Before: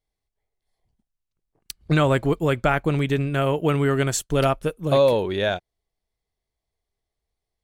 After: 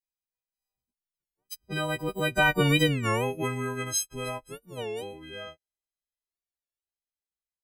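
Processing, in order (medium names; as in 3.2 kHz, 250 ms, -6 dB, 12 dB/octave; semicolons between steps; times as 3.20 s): partials quantised in pitch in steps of 4 st; Doppler pass-by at 2.73 s, 35 m/s, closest 8.4 m; warped record 33 1/3 rpm, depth 250 cents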